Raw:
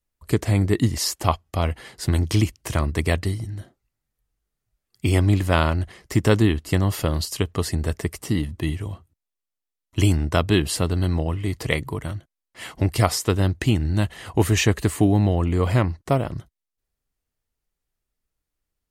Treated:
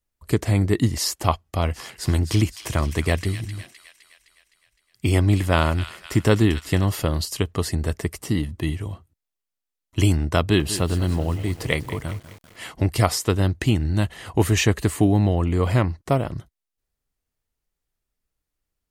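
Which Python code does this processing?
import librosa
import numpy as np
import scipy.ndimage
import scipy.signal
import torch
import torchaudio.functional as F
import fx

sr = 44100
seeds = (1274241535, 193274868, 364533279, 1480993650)

y = fx.echo_wet_highpass(x, sr, ms=257, feedback_pct=57, hz=2000.0, wet_db=-8.5, at=(1.73, 6.89), fade=0.02)
y = fx.echo_crushed(y, sr, ms=195, feedback_pct=55, bits=6, wet_db=-13.5, at=(10.4, 12.7))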